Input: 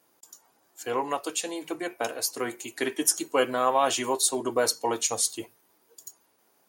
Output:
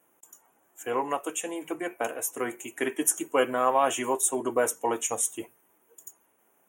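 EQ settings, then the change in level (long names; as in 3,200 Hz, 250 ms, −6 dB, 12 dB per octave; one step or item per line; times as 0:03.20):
Butterworth band-reject 4,500 Hz, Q 1.2
parametric band 110 Hz −4.5 dB 0.34 octaves
0.0 dB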